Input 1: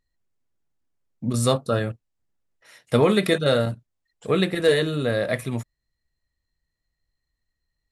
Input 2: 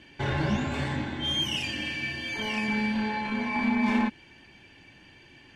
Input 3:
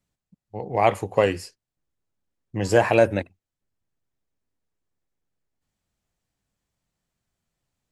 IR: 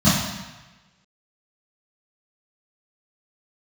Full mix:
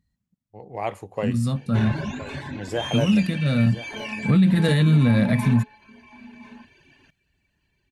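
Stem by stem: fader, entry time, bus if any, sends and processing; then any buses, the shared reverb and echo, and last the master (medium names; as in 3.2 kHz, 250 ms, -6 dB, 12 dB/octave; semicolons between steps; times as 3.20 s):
-0.5 dB, 0.00 s, no send, no echo send, high-pass 54 Hz; resonant low shelf 290 Hz +11 dB, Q 3; auto duck -12 dB, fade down 0.40 s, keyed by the third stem
-1.0 dB, 1.55 s, no send, echo send -17.5 dB, reverb removal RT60 1.1 s; rippled EQ curve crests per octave 1.5, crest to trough 6 dB
-12.5 dB, 0.00 s, no send, echo send -14 dB, level rider gain up to 7 dB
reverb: none
echo: delay 1018 ms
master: peak limiter -10.5 dBFS, peak gain reduction 11 dB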